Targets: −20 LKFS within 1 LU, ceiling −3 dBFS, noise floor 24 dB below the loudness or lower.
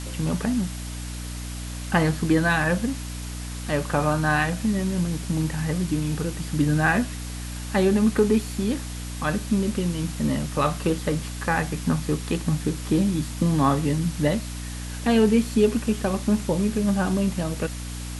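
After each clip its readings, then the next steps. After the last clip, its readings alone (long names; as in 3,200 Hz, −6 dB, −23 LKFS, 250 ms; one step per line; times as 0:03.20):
mains hum 60 Hz; hum harmonics up to 300 Hz; level of the hum −31 dBFS; background noise floor −33 dBFS; target noise floor −49 dBFS; integrated loudness −24.5 LKFS; sample peak −5.0 dBFS; target loudness −20.0 LKFS
→ mains-hum notches 60/120/180/240/300 Hz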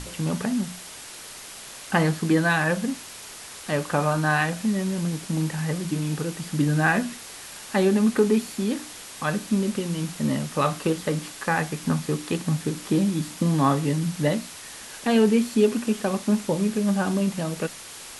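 mains hum none found; background noise floor −41 dBFS; target noise floor −49 dBFS
→ broadband denoise 8 dB, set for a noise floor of −41 dBFS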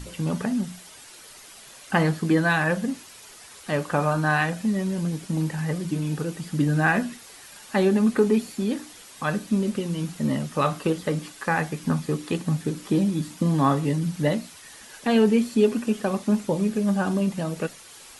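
background noise floor −46 dBFS; target noise floor −49 dBFS
→ broadband denoise 6 dB, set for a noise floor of −46 dBFS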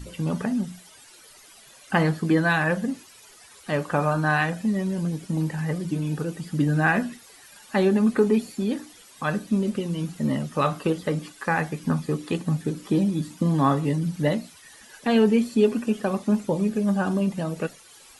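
background noise floor −50 dBFS; integrated loudness −24.5 LKFS; sample peak −5.5 dBFS; target loudness −20.0 LKFS
→ level +4.5 dB
brickwall limiter −3 dBFS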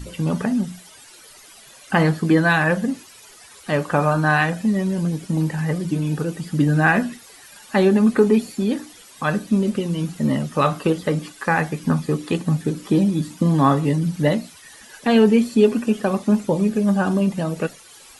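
integrated loudness −20.5 LKFS; sample peak −3.0 dBFS; background noise floor −46 dBFS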